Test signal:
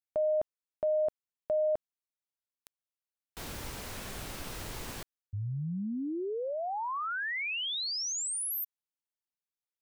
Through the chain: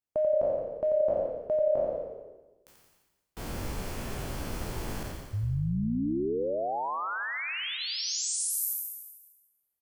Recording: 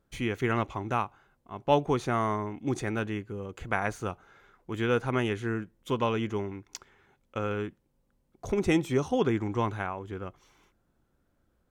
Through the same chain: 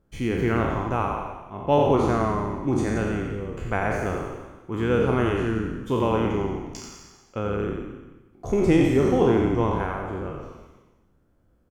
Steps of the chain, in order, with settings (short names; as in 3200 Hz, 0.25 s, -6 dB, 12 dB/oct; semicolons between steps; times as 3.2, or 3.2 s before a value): spectral trails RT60 1.09 s; tilt shelf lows +4.5 dB; notch 3800 Hz, Q 14; on a send: frequency-shifting echo 87 ms, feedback 55%, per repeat -33 Hz, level -6 dB